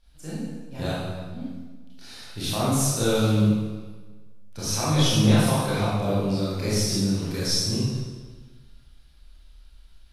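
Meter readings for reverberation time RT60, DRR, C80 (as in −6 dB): 1.4 s, −10.0 dB, 0.0 dB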